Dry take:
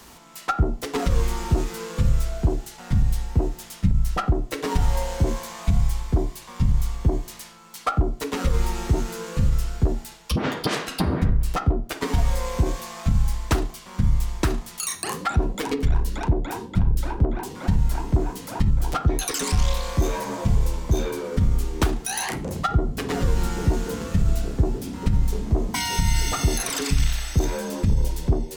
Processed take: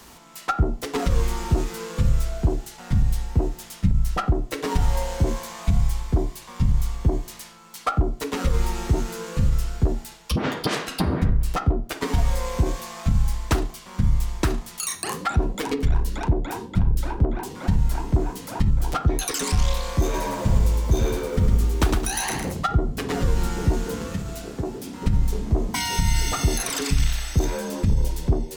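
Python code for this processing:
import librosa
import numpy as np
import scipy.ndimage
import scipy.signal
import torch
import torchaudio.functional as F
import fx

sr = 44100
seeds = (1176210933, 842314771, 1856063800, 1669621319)

y = fx.echo_crushed(x, sr, ms=108, feedback_pct=35, bits=8, wet_db=-4, at=(20.03, 22.53))
y = fx.highpass(y, sr, hz=260.0, slope=6, at=(24.14, 25.02))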